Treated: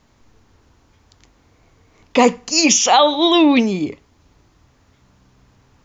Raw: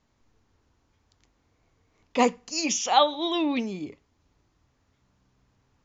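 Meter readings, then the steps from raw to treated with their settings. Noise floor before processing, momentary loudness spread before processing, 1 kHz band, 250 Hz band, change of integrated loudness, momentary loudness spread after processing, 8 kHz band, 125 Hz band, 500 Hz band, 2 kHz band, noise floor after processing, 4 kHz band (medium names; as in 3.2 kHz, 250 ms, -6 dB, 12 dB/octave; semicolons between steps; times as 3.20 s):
-71 dBFS, 13 LU, +8.0 dB, +12.5 dB, +11.0 dB, 10 LU, no reading, +13.5 dB, +10.5 dB, +11.5 dB, -57 dBFS, +11.5 dB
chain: loudness maximiser +14.5 dB; trim -1 dB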